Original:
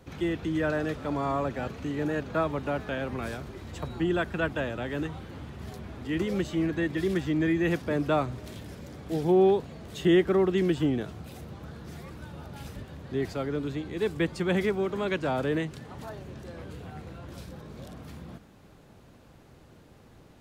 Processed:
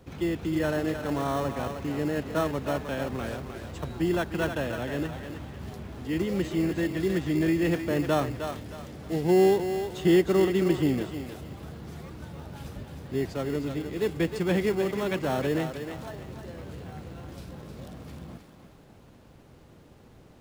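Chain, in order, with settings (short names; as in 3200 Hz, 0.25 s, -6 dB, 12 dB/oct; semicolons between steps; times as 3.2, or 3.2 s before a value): in parallel at -7.5 dB: sample-rate reducer 2400 Hz, jitter 0%; on the sum: thinning echo 0.31 s, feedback 35%, high-pass 420 Hz, level -6.5 dB; gain -2 dB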